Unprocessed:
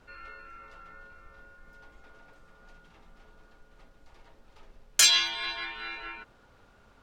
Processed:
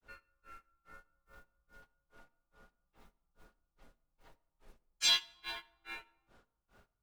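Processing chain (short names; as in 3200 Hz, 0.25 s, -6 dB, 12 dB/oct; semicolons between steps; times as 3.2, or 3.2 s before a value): modulation noise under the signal 19 dB; grains 0.219 s, grains 2.4/s, spray 14 ms, pitch spread up and down by 0 st; on a send: reverb RT60 1.1 s, pre-delay 5 ms, DRR 19 dB; on the sum: gain -3.5 dB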